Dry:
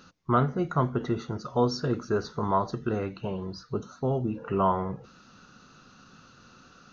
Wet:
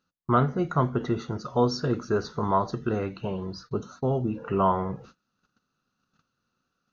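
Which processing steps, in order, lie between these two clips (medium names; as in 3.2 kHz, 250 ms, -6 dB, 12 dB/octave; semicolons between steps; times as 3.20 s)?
gate -49 dBFS, range -26 dB; trim +1.5 dB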